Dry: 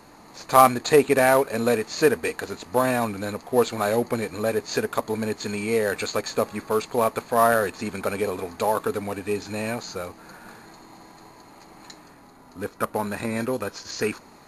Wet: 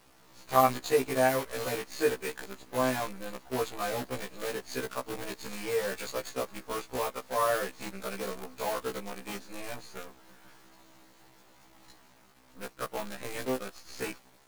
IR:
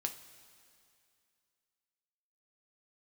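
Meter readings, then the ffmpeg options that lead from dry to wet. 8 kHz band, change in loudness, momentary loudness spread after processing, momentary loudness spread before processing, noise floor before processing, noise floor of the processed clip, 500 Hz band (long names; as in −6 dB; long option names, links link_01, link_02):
−7.0 dB, −9.0 dB, 14 LU, 12 LU, −50 dBFS, −59 dBFS, −9.5 dB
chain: -af "acrusher=bits=5:dc=4:mix=0:aa=0.000001,afftfilt=real='re*1.73*eq(mod(b,3),0)':imag='im*1.73*eq(mod(b,3),0)':win_size=2048:overlap=0.75,volume=-7dB"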